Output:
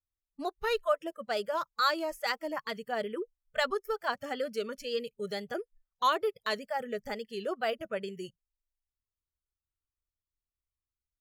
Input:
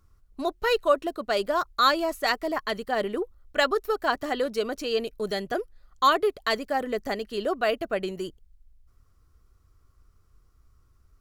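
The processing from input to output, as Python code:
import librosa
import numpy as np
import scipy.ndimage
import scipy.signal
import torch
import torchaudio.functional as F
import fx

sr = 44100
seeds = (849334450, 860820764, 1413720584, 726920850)

y = fx.wow_flutter(x, sr, seeds[0], rate_hz=2.1, depth_cents=71.0)
y = fx.noise_reduce_blind(y, sr, reduce_db=29)
y = y * 10.0 ** (-6.5 / 20.0)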